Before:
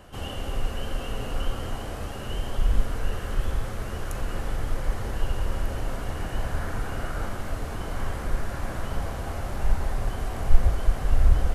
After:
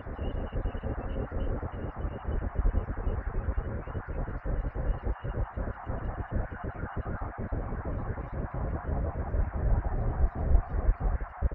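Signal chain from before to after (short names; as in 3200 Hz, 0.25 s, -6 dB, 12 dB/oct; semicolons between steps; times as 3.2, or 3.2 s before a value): random spectral dropouts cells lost 55%; HPF 45 Hz; notch 3200 Hz, Q 5.4; loudest bins only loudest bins 32; reverse echo 0.308 s -3.5 dB; band noise 620–1900 Hz -47 dBFS; tape spacing loss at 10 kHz 44 dB; outdoor echo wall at 28 m, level -20 dB; gain +2 dB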